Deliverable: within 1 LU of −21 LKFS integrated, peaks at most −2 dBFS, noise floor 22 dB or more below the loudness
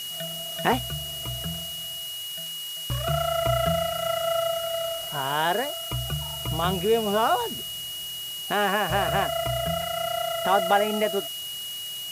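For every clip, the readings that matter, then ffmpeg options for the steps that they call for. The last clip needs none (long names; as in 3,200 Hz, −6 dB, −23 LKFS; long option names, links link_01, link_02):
interfering tone 2,900 Hz; level of the tone −33 dBFS; background noise floor −35 dBFS; target noise floor −49 dBFS; integrated loudness −26.5 LKFS; sample peak −5.5 dBFS; target loudness −21.0 LKFS
→ -af "bandreject=frequency=2900:width=30"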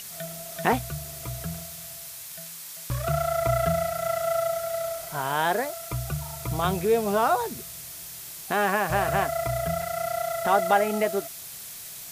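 interfering tone none found; background noise floor −40 dBFS; target noise floor −50 dBFS
→ -af "afftdn=noise_reduction=10:noise_floor=-40"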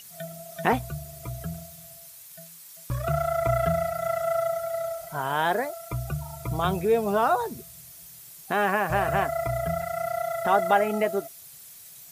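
background noise floor −47 dBFS; target noise floor −49 dBFS
→ -af "afftdn=noise_reduction=6:noise_floor=-47"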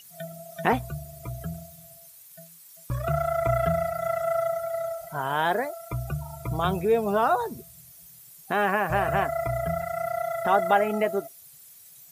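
background noise floor −50 dBFS; integrated loudness −26.5 LKFS; sample peak −6.0 dBFS; target loudness −21.0 LKFS
→ -af "volume=5.5dB,alimiter=limit=-2dB:level=0:latency=1"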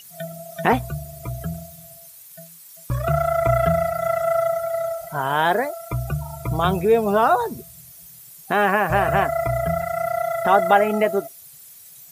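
integrated loudness −21.0 LKFS; sample peak −2.0 dBFS; background noise floor −45 dBFS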